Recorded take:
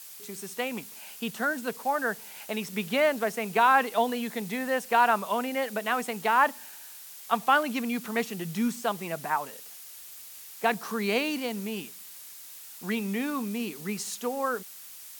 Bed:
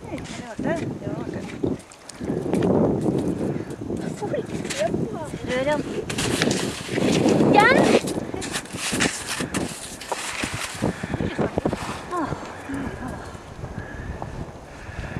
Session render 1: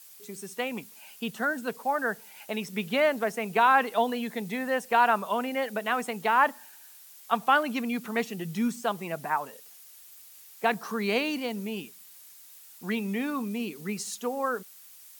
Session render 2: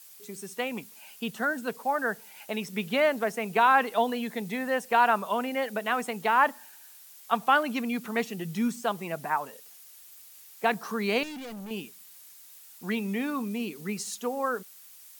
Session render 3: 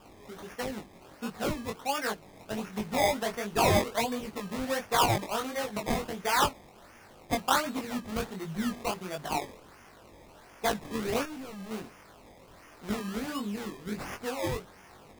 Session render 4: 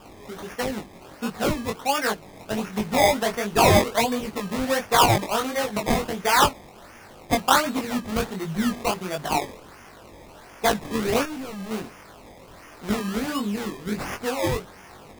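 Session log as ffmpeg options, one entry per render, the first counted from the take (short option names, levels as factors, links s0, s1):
-af "afftdn=nr=7:nf=-46"
-filter_complex "[0:a]asettb=1/sr,asplit=3[s0][s1][s2];[s0]atrim=end=11.234[s3];[s1]atrim=start=11.23:end=11.71,asetpts=PTS-STARTPTS,afade=t=in:d=0.004:c=qsin,afade=t=out:st=0.476:d=0.004:c=qsin,asoftclip=type=hard:threshold=0.0126[s4];[s2]atrim=start=11.706[s5];[s3][s4]acrossfade=d=0.004:c1=hsin:c2=qsin[s6];[s6][s5]acrossfade=d=0.004:c1=qsin:c2=hsin"
-af "acrusher=samples=21:mix=1:aa=0.000001:lfo=1:lforange=21:lforate=1.4,flanger=delay=19:depth=4:speed=1.4"
-af "volume=2.37"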